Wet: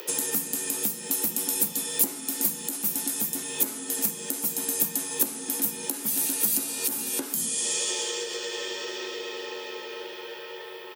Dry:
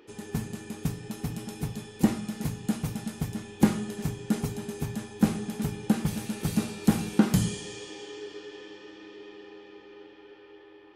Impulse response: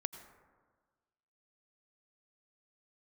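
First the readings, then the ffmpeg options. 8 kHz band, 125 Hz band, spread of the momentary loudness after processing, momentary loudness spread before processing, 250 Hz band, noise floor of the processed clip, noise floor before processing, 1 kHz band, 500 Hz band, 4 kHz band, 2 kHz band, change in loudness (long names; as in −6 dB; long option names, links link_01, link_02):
+16.0 dB, −18.5 dB, 12 LU, 20 LU, −9.5 dB, −40 dBFS, −52 dBFS, −1.0 dB, +1.0 dB, +9.5 dB, +4.5 dB, +4.0 dB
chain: -filter_complex "[0:a]acontrast=77,highshelf=frequency=6600:gain=11,acompressor=threshold=-34dB:ratio=12,aemphasis=mode=production:type=bsi,afreqshift=56,asplit=2[link_01][link_02];[link_02]adelay=14,volume=-11.5dB[link_03];[link_01][link_03]amix=inputs=2:normalize=0,alimiter=level_in=13dB:limit=-1dB:release=50:level=0:latency=1,volume=-7dB"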